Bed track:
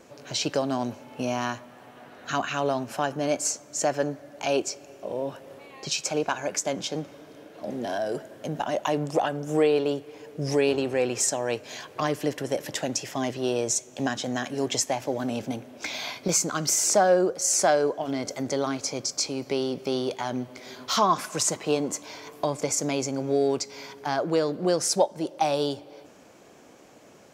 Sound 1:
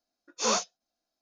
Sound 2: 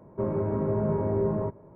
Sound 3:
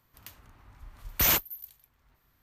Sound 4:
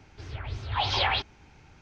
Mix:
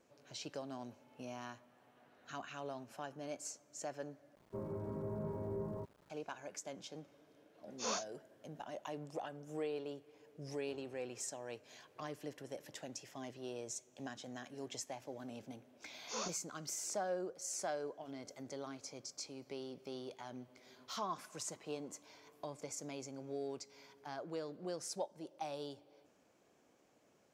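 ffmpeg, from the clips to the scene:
-filter_complex "[1:a]asplit=2[a][b];[0:a]volume=-19dB[c];[2:a]aeval=exprs='val(0)*gte(abs(val(0)),0.00398)':c=same[d];[c]asplit=2[e][f];[e]atrim=end=4.354[g];[d]atrim=end=1.75,asetpts=PTS-STARTPTS,volume=-15dB[h];[f]atrim=start=6.096[i];[a]atrim=end=1.21,asetpts=PTS-STARTPTS,volume=-12.5dB,afade=t=in:d=0.004:c=hsin,afade=t=out:st=1.206:d=0.004:c=hsin,adelay=7400[j];[b]atrim=end=1.21,asetpts=PTS-STARTPTS,volume=-15.5dB,afade=t=in:d=0.004:c=hsin,afade=t=out:st=1.206:d=0.004:c=hsin,adelay=15690[k];[g][h]acrossfade=d=0.004:c1=hsin:c2=hsin[l];[l][i]acrossfade=d=0.004:c1=hsin:c2=hsin[m];[m][j][k]amix=inputs=3:normalize=0"

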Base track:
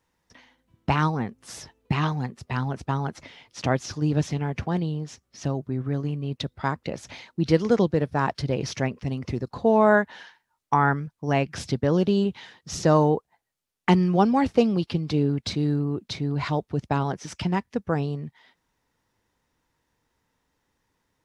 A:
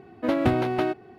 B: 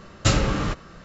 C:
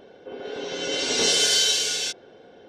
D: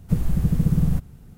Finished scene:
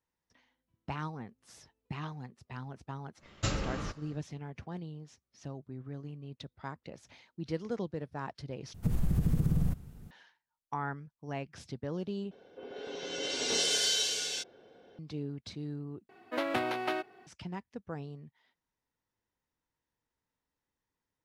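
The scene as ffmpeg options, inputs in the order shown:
-filter_complex "[0:a]volume=-15.5dB[a];[4:a]acompressor=threshold=-18dB:ratio=6:attack=3.2:release=140:knee=1:detection=peak[b];[1:a]highpass=f=1.2k:p=1[c];[a]asplit=4[d][e][f][g];[d]atrim=end=8.744[h];[b]atrim=end=1.37,asetpts=PTS-STARTPTS,volume=-4.5dB[i];[e]atrim=start=10.106:end=12.314[j];[3:a]atrim=end=2.68,asetpts=PTS-STARTPTS,volume=-9dB[k];[f]atrim=start=14.986:end=16.094[l];[c]atrim=end=1.18,asetpts=PTS-STARTPTS,volume=-0.5dB[m];[g]atrim=start=17.266[n];[2:a]atrim=end=1.04,asetpts=PTS-STARTPTS,volume=-12.5dB,afade=t=in:d=0.1,afade=t=out:st=0.94:d=0.1,adelay=3180[o];[h][i]acrossfade=d=0.004:c1=hsin:c2=hsin[p];[p][j]acrossfade=d=0.004:c1=hsin:c2=hsin[q];[q][k]acrossfade=d=0.004:c1=hsin:c2=hsin[r];[r][l]acrossfade=d=0.004:c1=hsin:c2=hsin[s];[s][m]acrossfade=d=0.004:c1=hsin:c2=hsin[t];[t][n]acrossfade=d=0.004:c1=hsin:c2=hsin[u];[u][o]amix=inputs=2:normalize=0"

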